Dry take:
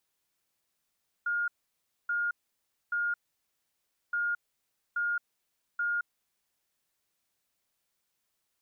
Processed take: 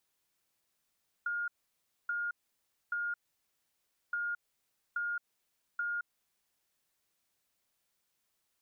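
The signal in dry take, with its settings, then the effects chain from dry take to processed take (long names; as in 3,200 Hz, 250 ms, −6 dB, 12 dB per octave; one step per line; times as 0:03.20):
beeps in groups sine 1,420 Hz, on 0.22 s, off 0.61 s, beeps 3, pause 0.99 s, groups 2, −27 dBFS
downward compressor, threshold −34 dBFS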